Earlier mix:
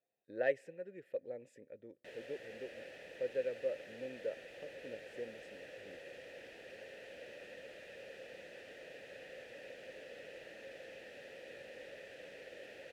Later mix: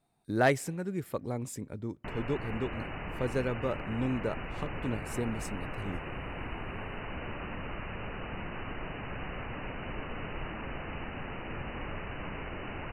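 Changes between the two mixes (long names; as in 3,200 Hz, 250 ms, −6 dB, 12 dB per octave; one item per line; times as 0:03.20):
background: add linear-phase brick-wall low-pass 3,000 Hz
master: remove formant filter e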